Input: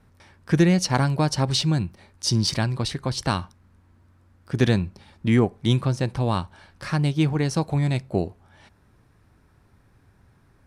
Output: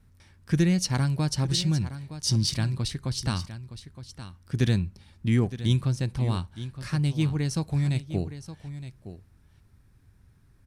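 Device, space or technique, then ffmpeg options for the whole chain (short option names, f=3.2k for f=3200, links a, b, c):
smiley-face EQ: -af "lowshelf=f=120:g=8,equalizer=f=720:t=o:w=2.1:g=-7,highshelf=f=6.3k:g=6,aecho=1:1:916:0.224,volume=-5dB"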